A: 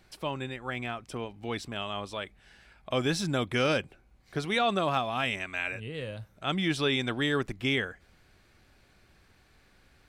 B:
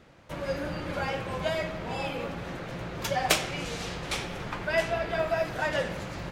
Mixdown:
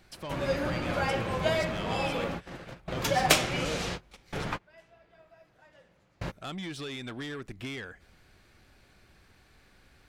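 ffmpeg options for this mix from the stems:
-filter_complex "[0:a]acompressor=threshold=-33dB:ratio=6,asoftclip=type=tanh:threshold=-34dB,volume=1.5dB,asplit=3[a][b][c];[a]atrim=end=4.47,asetpts=PTS-STARTPTS,afade=t=out:st=4.466:d=0.004:c=hsin[d];[b]atrim=start=4.47:end=6.21,asetpts=PTS-STARTPTS,volume=0[e];[c]atrim=start=6.21,asetpts=PTS-STARTPTS,afade=t=in:d=0.004:c=hsin[f];[d][e][f]concat=n=3:v=0:a=1,asplit=2[g][h];[1:a]volume=2dB[i];[h]apad=whole_len=278574[j];[i][j]sidechaingate=range=-32dB:threshold=-53dB:ratio=16:detection=peak[k];[g][k]amix=inputs=2:normalize=0"

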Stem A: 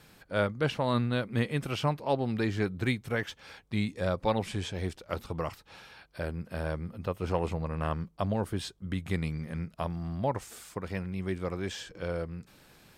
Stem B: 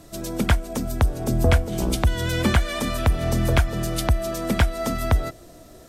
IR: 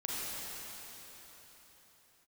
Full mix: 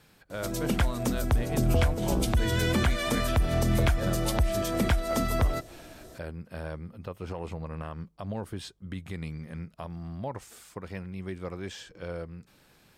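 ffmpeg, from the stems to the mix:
-filter_complex "[0:a]alimiter=limit=-22.5dB:level=0:latency=1:release=70,volume=-3dB[a];[1:a]adelay=300,volume=-2dB[b];[a][b]amix=inputs=2:normalize=0,alimiter=limit=-15.5dB:level=0:latency=1:release=56"

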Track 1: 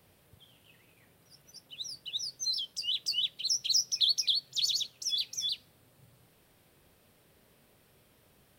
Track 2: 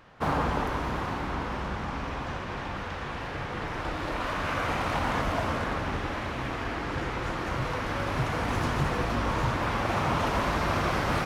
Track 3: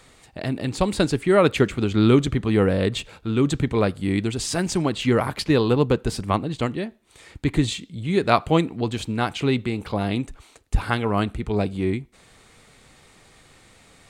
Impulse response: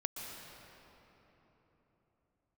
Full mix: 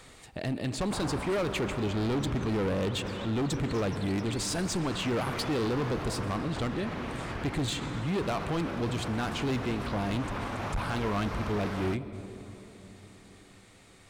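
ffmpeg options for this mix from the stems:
-filter_complex "[0:a]volume=-18dB[a];[1:a]adelay=700,volume=-6dB,asplit=2[b][c];[c]volume=-16dB[d];[2:a]alimiter=limit=-12dB:level=0:latency=1:release=36,volume=-2dB,asplit=2[e][f];[f]volume=-9dB[g];[3:a]atrim=start_sample=2205[h];[d][g]amix=inputs=2:normalize=0[i];[i][h]afir=irnorm=-1:irlink=0[j];[a][b][e][j]amix=inputs=4:normalize=0,asoftclip=type=hard:threshold=-21dB,alimiter=level_in=2dB:limit=-24dB:level=0:latency=1:release=46,volume=-2dB"

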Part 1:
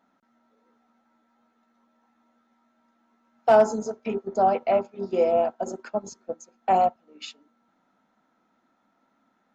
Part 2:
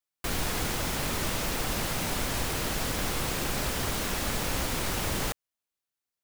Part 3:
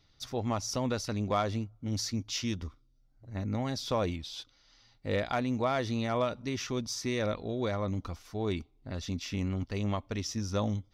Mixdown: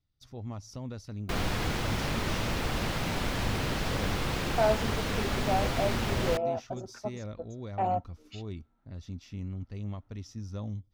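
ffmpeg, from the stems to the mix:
-filter_complex "[0:a]highshelf=f=4.9k:g=-6.5,adelay=1100,volume=-9dB[a];[1:a]acrossover=split=5200[b][c];[c]acompressor=threshold=-48dB:ratio=4:attack=1:release=60[d];[b][d]amix=inputs=2:normalize=0,adelay=1050,volume=-0.5dB[e];[2:a]agate=range=-8dB:threshold=-52dB:ratio=16:detection=peak,lowshelf=f=250:g=10,volume=-14.5dB[f];[a][e][f]amix=inputs=3:normalize=0,equalizer=f=110:w=0.56:g=3"

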